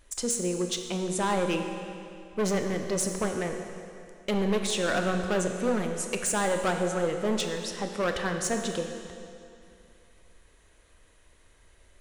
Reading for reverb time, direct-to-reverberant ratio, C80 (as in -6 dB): 2.6 s, 4.5 dB, 6.5 dB